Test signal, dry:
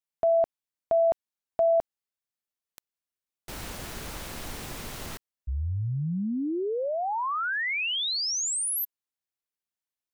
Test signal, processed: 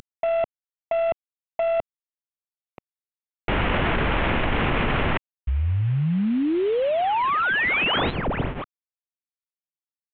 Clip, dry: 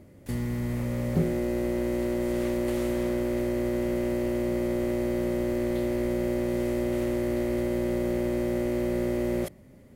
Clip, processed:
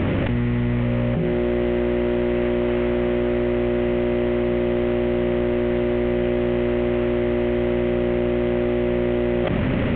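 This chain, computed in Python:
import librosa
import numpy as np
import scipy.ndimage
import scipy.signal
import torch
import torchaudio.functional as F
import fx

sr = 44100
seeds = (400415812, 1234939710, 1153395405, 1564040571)

y = fx.cvsd(x, sr, bps=16000)
y = fx.env_flatten(y, sr, amount_pct=100)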